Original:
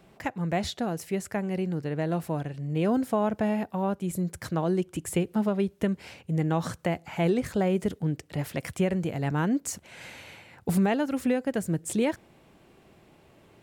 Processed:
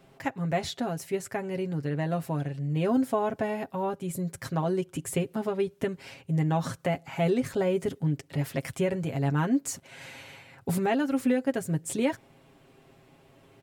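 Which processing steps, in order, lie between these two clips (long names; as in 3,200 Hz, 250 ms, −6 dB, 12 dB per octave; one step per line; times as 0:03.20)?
comb filter 7.4 ms, depth 68%
level −2 dB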